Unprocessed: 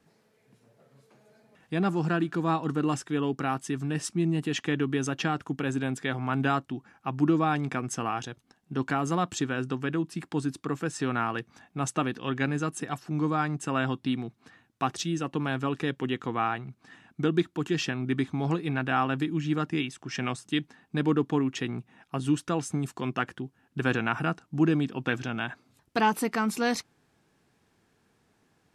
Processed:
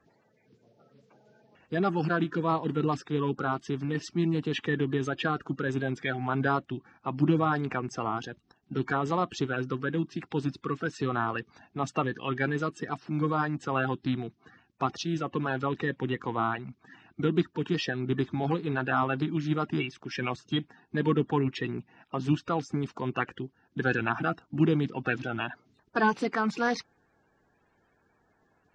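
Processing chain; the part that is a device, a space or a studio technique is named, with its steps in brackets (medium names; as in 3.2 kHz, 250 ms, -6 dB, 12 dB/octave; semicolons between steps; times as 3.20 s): clip after many re-uploads (low-pass 5.3 kHz 24 dB/octave; coarse spectral quantiser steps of 30 dB)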